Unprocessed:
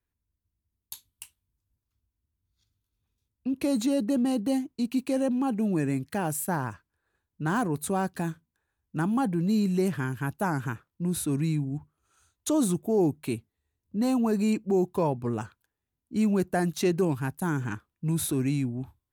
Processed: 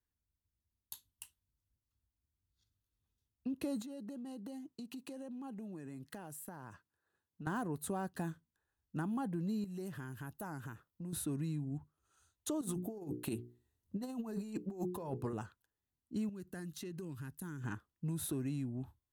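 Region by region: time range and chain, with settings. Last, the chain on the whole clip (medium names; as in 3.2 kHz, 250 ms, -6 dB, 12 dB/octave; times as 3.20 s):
3.82–7.47 s: high-pass 110 Hz + compression 16:1, threshold -36 dBFS
9.64–11.13 s: treble shelf 12 kHz +9 dB + compression 3:1, threshold -37 dBFS
12.61–15.33 s: hum notches 60/120/180/240/300/360/420/480 Hz + compressor with a negative ratio -30 dBFS, ratio -0.5 + peaking EQ 13 kHz +3 dB 1.2 oct
16.29–17.64 s: peaking EQ 700 Hz -14 dB 0.98 oct + compression 12:1, threshold -34 dBFS
whole clip: band-stop 2.3 kHz, Q 6.1; dynamic bell 5.8 kHz, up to -4 dB, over -48 dBFS, Q 0.87; compression, threshold -28 dBFS; trim -6.5 dB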